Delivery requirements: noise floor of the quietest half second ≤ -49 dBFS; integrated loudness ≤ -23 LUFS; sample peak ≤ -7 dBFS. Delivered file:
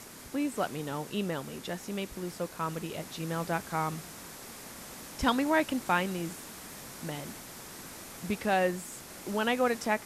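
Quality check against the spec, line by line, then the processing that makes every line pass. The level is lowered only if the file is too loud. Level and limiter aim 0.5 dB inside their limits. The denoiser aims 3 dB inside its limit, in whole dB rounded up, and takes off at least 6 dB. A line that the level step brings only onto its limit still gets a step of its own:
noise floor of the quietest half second -46 dBFS: fail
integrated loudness -32.5 LUFS: OK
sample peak -12.5 dBFS: OK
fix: denoiser 6 dB, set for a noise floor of -46 dBFS

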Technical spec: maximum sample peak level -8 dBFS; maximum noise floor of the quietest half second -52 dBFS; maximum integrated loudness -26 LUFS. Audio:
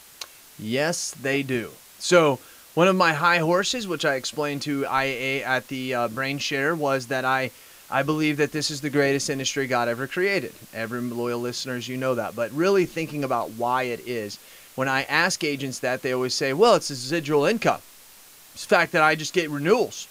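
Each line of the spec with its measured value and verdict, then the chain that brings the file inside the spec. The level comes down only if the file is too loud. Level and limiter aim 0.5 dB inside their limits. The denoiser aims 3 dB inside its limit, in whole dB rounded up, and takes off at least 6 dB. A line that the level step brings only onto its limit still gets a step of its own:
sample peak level -5.5 dBFS: fail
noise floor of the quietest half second -49 dBFS: fail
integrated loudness -23.5 LUFS: fail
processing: denoiser 6 dB, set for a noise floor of -49 dBFS; gain -3 dB

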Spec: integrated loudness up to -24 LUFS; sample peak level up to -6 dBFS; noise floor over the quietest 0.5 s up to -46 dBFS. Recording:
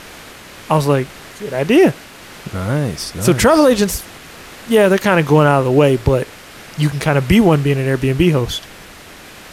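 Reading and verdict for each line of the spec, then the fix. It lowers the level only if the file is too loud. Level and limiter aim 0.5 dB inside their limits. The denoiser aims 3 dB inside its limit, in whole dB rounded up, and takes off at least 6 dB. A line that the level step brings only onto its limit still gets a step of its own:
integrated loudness -15.0 LUFS: fail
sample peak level -1.5 dBFS: fail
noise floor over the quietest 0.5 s -38 dBFS: fail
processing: gain -9.5 dB

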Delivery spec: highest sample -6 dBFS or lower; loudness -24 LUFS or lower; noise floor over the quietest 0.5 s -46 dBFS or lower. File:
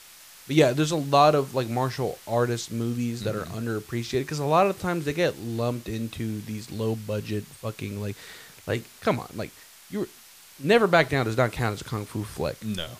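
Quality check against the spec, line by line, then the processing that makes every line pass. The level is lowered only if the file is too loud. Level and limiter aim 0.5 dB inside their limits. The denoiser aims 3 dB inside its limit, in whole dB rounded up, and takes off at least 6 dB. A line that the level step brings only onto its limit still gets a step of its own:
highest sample -6.5 dBFS: OK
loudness -26.5 LUFS: OK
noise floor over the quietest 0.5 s -50 dBFS: OK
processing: none

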